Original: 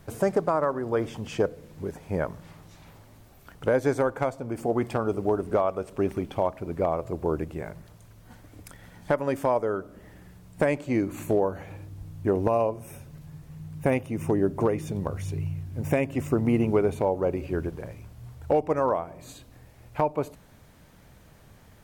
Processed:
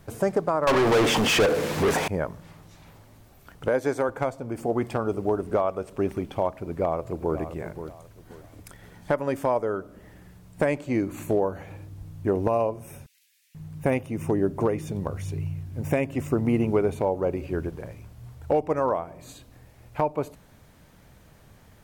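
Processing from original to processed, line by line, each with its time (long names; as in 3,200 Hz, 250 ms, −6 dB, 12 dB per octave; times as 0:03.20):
0:00.67–0:02.08: mid-hump overdrive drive 36 dB, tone 5,300 Hz, clips at −13 dBFS
0:03.68–0:04.09: high-pass filter 230 Hz 6 dB per octave
0:06.53–0:07.39: delay throw 530 ms, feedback 30%, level −11 dB
0:13.06–0:13.55: Butterworth high-pass 2,100 Hz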